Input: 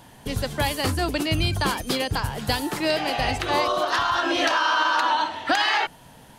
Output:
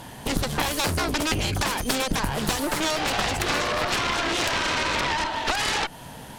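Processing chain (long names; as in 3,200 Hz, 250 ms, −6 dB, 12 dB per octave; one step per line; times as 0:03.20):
downward compressor 10 to 1, threshold −26 dBFS, peak gain reduction 10 dB
harmonic generator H 6 −8 dB, 7 −6 dB, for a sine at −13.5 dBFS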